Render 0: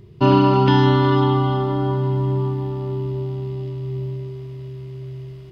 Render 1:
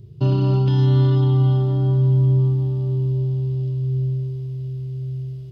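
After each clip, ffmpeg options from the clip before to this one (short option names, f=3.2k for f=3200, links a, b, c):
-af "alimiter=limit=-10dB:level=0:latency=1:release=38,equalizer=f=125:t=o:w=1:g=9,equalizer=f=250:t=o:w=1:g=-7,equalizer=f=1k:t=o:w=1:g=-11,equalizer=f=2k:t=o:w=1:g=-11,volume=-1.5dB"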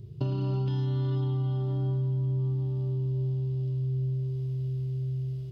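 -af "acompressor=threshold=-26dB:ratio=4,volume=-2dB"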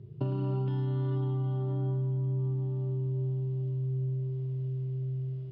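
-af "highpass=120,lowpass=2.1k"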